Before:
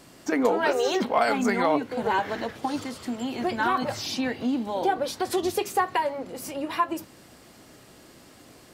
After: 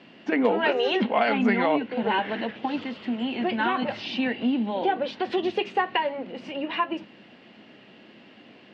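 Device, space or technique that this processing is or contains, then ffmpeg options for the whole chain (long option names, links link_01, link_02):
kitchen radio: -af "highpass=180,equalizer=frequency=210:width_type=q:width=4:gain=9,equalizer=frequency=1200:width_type=q:width=4:gain=-5,equalizer=frequency=1900:width_type=q:width=4:gain=3,equalizer=frequency=2800:width_type=q:width=4:gain=9,lowpass=frequency=3600:width=0.5412,lowpass=frequency=3600:width=1.3066"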